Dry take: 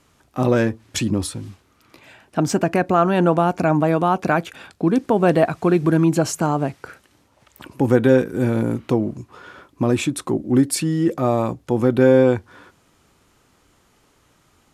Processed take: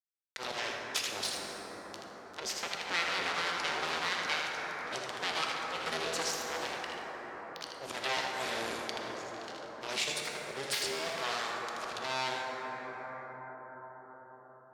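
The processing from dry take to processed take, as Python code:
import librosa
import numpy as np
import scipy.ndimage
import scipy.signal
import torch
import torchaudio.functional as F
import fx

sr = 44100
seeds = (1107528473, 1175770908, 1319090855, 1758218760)

p1 = fx.octave_divider(x, sr, octaves=1, level_db=1.0)
p2 = np.sign(p1) * np.maximum(np.abs(p1) - 10.0 ** (-34.5 / 20.0), 0.0)
p3 = fx.rider(p2, sr, range_db=10, speed_s=2.0)
p4 = fx.auto_swell(p3, sr, attack_ms=217.0)
p5 = p4 + fx.echo_single(p4, sr, ms=79, db=-5.5, dry=0)
p6 = np.abs(p5)
p7 = fx.bandpass_q(p6, sr, hz=4500.0, q=1.4)
p8 = fx.rev_plate(p7, sr, seeds[0], rt60_s=3.5, hf_ratio=0.3, predelay_ms=0, drr_db=0.5)
p9 = fx.band_squash(p8, sr, depth_pct=70)
y = F.gain(torch.from_numpy(p9), 1.5).numpy()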